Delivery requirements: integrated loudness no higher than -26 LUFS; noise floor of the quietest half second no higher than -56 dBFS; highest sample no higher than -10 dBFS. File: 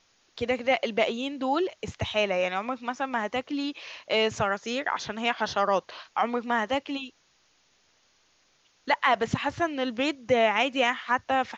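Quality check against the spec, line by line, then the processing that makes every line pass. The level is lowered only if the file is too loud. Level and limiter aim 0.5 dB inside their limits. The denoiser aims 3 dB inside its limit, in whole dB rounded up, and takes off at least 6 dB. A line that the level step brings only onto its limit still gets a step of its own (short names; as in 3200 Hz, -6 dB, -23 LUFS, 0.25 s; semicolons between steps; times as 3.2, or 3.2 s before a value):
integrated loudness -27.5 LUFS: OK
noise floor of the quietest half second -66 dBFS: OK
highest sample -9.5 dBFS: fail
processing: limiter -10.5 dBFS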